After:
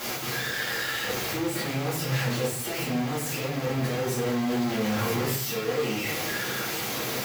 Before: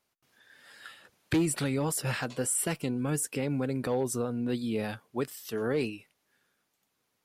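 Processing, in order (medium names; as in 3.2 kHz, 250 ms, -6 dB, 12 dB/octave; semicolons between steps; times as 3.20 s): one-bit comparator; high-pass 82 Hz; peaking EQ 9.2 kHz -10 dB 0.33 oct; simulated room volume 100 m³, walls mixed, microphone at 2.2 m; 4.26–5.36 s: level flattener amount 50%; trim -5.5 dB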